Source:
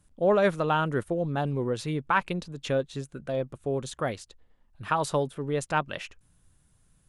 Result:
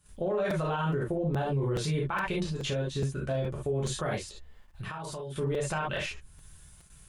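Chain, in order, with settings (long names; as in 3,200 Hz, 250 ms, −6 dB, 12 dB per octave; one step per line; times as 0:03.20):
0:00.90–0:01.35: high-shelf EQ 2,100 Hz −9.5 dB
reverb whose tail is shaped and stops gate 90 ms flat, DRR −4.5 dB
noise gate −59 dBFS, range −9 dB
low-shelf EQ 90 Hz +7.5 dB
brickwall limiter −21.5 dBFS, peak gain reduction 17.5 dB
0:04.18–0:05.36: downward compressor 6 to 1, threshold −35 dBFS, peak gain reduction 9 dB
regular buffer underruns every 0.42 s, samples 256, repeat, from 0:00.50
one half of a high-frequency compander encoder only
level −1 dB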